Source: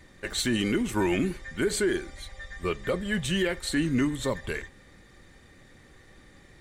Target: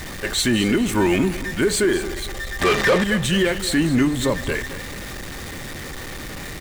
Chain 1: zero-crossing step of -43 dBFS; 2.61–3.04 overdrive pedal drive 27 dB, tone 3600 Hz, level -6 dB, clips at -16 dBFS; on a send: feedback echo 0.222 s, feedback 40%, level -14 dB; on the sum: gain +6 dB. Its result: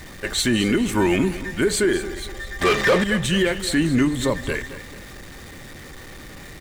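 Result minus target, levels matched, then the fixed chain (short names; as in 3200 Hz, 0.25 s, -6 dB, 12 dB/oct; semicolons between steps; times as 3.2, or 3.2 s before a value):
zero-crossing step: distortion -8 dB
zero-crossing step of -34 dBFS; 2.61–3.04 overdrive pedal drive 27 dB, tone 3600 Hz, level -6 dB, clips at -16 dBFS; on a send: feedback echo 0.222 s, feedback 40%, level -14 dB; on the sum: gain +6 dB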